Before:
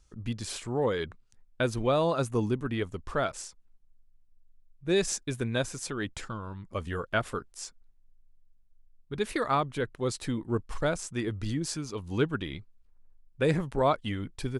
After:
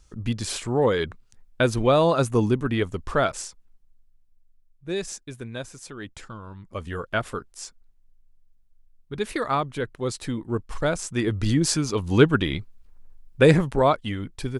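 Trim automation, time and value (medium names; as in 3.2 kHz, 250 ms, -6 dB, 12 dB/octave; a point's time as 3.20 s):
3.31 s +7 dB
5.28 s -5 dB
5.84 s -5 dB
7.04 s +2.5 dB
10.67 s +2.5 dB
11.65 s +11 dB
13.42 s +11 dB
14.03 s +3.5 dB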